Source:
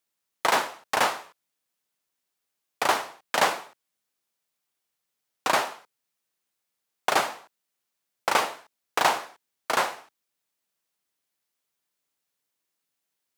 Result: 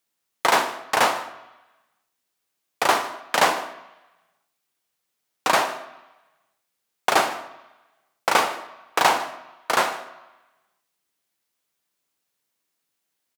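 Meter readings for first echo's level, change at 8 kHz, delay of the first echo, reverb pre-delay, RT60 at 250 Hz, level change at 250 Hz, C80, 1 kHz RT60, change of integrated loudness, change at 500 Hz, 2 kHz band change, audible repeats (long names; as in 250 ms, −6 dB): −21.0 dB, +3.5 dB, 153 ms, 3 ms, 0.90 s, +5.0 dB, 14.0 dB, 1.1 s, +4.0 dB, +4.0 dB, +4.0 dB, 1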